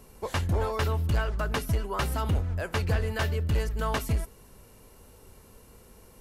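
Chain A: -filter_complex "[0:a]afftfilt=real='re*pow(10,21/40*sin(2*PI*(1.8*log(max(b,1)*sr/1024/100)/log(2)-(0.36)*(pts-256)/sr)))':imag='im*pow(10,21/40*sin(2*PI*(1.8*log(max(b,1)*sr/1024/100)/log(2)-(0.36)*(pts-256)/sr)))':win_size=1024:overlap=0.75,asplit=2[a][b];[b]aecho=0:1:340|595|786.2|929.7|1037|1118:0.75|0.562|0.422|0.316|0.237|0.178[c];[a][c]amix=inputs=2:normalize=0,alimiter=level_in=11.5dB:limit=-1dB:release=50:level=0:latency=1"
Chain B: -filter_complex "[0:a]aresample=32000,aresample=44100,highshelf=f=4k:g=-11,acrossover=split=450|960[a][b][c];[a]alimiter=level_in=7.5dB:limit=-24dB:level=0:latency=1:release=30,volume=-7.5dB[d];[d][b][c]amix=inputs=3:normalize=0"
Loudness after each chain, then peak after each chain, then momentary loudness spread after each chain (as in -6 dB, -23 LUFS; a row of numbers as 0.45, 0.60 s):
-12.0, -34.0 LUFS; -1.0, -17.0 dBFS; 6, 3 LU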